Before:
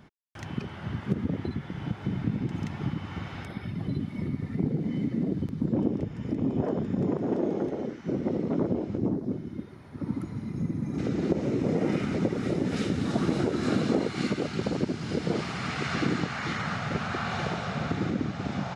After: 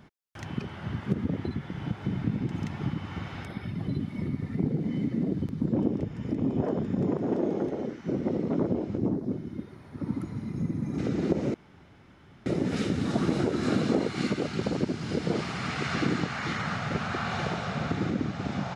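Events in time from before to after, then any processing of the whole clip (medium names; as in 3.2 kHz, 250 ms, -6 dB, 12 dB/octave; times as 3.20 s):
11.54–12.46 s: room tone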